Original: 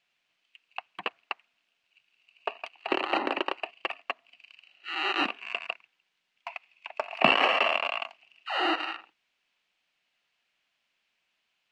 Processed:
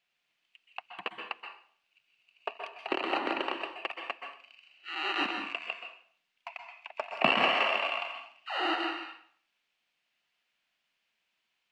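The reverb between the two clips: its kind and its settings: plate-style reverb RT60 0.51 s, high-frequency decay 0.95×, pre-delay 0.115 s, DRR 4 dB; gain -4 dB

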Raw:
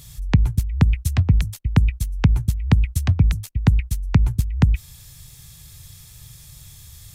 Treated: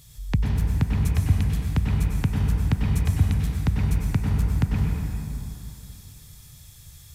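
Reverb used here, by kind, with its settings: plate-style reverb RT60 2.9 s, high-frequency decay 0.55×, pre-delay 85 ms, DRR -2 dB; gain -7.5 dB

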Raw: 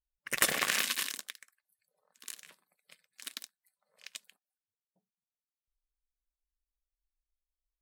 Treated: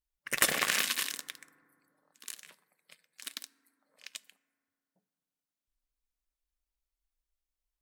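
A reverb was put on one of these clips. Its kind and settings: FDN reverb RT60 2.5 s, low-frequency decay 1.4×, high-frequency decay 0.25×, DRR 18 dB; gain +1 dB

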